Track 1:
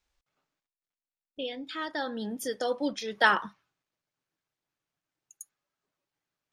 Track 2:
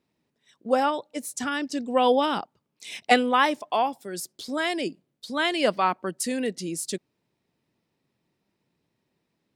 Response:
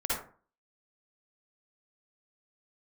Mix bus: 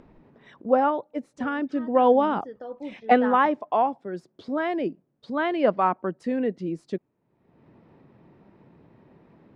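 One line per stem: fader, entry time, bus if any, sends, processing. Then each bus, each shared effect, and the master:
-8.5 dB, 0.00 s, no send, bass shelf 170 Hz +11.5 dB
+2.5 dB, 0.00 s, no send, none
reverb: none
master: low-pass 1.3 kHz 12 dB/octave; upward compressor, threshold -37 dBFS

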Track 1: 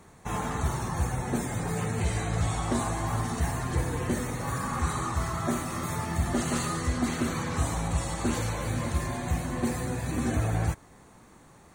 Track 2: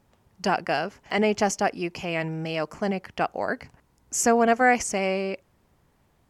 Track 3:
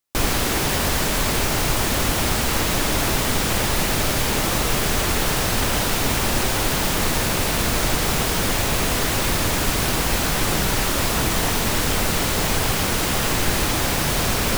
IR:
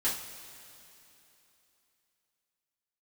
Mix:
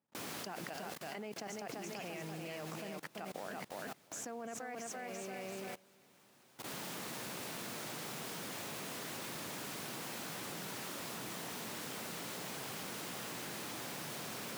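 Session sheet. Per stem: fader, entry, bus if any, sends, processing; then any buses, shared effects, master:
-16.5 dB, 1.90 s, bus A, no send, no echo send, compression, threshold -31 dBFS, peak gain reduction 10 dB
+3.0 dB, 0.00 s, bus A, no send, echo send -18 dB, none
-18.0 dB, 0.00 s, no bus, no send, no echo send, auto duck -8 dB, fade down 1.90 s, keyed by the second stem
bus A: 0.0 dB, level held to a coarse grid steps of 20 dB; peak limiter -18 dBFS, peak gain reduction 10.5 dB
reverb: none
echo: feedback delay 338 ms, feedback 38%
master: high-pass 140 Hz 24 dB/octave; level held to a coarse grid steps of 22 dB

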